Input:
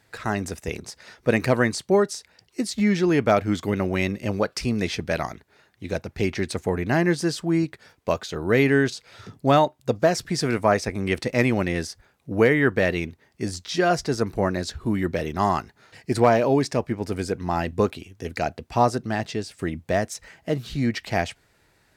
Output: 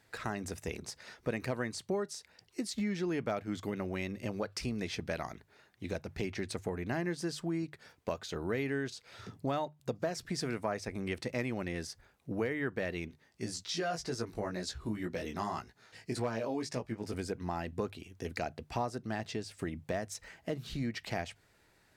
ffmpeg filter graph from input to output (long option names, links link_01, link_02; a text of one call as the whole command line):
ffmpeg -i in.wav -filter_complex "[0:a]asettb=1/sr,asplit=3[link_01][link_02][link_03];[link_01]atrim=end=13.084[link_04];[link_02]atrim=start=13.08:end=17.14,asetpts=PTS-STARTPTS,afade=type=in:duration=0.004:curve=qsin,afade=type=out:start_time=4.056:duration=0.004:curve=qsin,flanger=delay=16:depth=2.7:speed=1.9,equalizer=frequency=6200:width=0.54:gain=4.5[link_05];[link_03]atrim=start=17.136[link_06];[link_04][link_05]acrossfade=duration=0.004:curve1=hsin:curve2=qsin[link_07];[link_07][link_06]acrossfade=duration=0.004:curve1=qsin:curve2=hsin,acompressor=threshold=-29dB:ratio=3,bandreject=frequency=50:width_type=h:width=6,bandreject=frequency=100:width_type=h:width=6,bandreject=frequency=150:width_type=h:width=6,volume=-5dB" out.wav